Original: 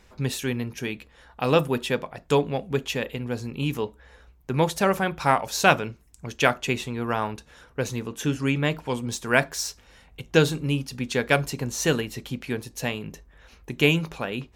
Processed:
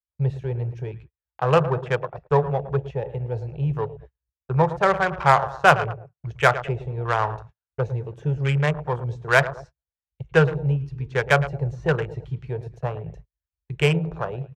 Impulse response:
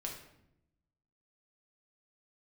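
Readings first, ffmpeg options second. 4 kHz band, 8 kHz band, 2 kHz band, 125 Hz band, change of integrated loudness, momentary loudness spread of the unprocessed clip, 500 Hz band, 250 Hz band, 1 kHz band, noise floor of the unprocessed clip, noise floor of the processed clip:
−5.0 dB, −11.5 dB, +2.0 dB, +5.5 dB, +2.5 dB, 12 LU, +2.0 dB, −3.0 dB, +4.5 dB, −56 dBFS, below −85 dBFS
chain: -filter_complex "[0:a]acrossover=split=250|1000|1900[link_01][link_02][link_03][link_04];[link_04]acompressor=threshold=-43dB:ratio=6[link_05];[link_01][link_02][link_03][link_05]amix=inputs=4:normalize=0,equalizer=frequency=300:width=3.3:gain=-12,asplit=2[link_06][link_07];[link_07]adelay=109,lowpass=frequency=2800:poles=1,volume=-12.5dB,asplit=2[link_08][link_09];[link_09]adelay=109,lowpass=frequency=2800:poles=1,volume=0.47,asplit=2[link_10][link_11];[link_11]adelay=109,lowpass=frequency=2800:poles=1,volume=0.47,asplit=2[link_12][link_13];[link_13]adelay=109,lowpass=frequency=2800:poles=1,volume=0.47,asplit=2[link_14][link_15];[link_15]adelay=109,lowpass=frequency=2800:poles=1,volume=0.47[link_16];[link_06][link_08][link_10][link_12][link_14][link_16]amix=inputs=6:normalize=0,afwtdn=0.0224,adynamicsmooth=sensitivity=2.5:basefreq=2900,agate=range=-40dB:threshold=-46dB:ratio=16:detection=peak,firequalizer=gain_entry='entry(150,0);entry(230,-22);entry(340,-4);entry(1200,0);entry(6100,7)':delay=0.05:min_phase=1,volume=6.5dB"

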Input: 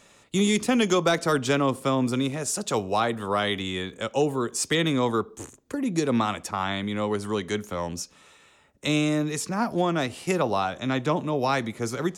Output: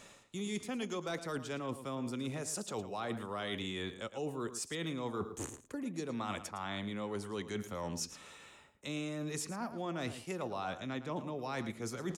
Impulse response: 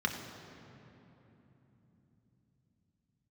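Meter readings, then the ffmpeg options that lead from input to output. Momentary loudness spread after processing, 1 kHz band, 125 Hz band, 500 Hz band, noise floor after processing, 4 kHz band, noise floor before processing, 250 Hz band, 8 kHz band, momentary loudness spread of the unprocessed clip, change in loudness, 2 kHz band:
4 LU, −14.5 dB, −13.0 dB, −14.0 dB, −58 dBFS, −13.5 dB, −57 dBFS, −14.0 dB, −11.0 dB, 8 LU, −14.0 dB, −13.5 dB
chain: -filter_complex "[0:a]areverse,acompressor=threshold=-36dB:ratio=10,areverse,asplit=2[link_01][link_02];[link_02]adelay=110.8,volume=-12dB,highshelf=frequency=4000:gain=-2.49[link_03];[link_01][link_03]amix=inputs=2:normalize=0"

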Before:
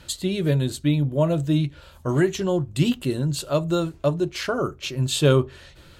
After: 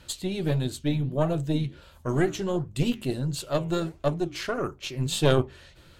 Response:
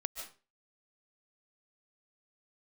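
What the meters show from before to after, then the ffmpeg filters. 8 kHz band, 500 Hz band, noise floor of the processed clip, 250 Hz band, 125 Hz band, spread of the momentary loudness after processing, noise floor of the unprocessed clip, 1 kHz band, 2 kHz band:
−4.5 dB, −4.0 dB, −54 dBFS, −4.5 dB, −5.0 dB, 7 LU, −50 dBFS, −2.0 dB, −3.5 dB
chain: -af "aeval=exprs='0.473*(cos(1*acos(clip(val(0)/0.473,-1,1)))-cos(1*PI/2))+0.211*(cos(2*acos(clip(val(0)/0.473,-1,1)))-cos(2*PI/2))':channel_layout=same,flanger=delay=2.9:depth=9.3:regen=-86:speed=1.5:shape=triangular"

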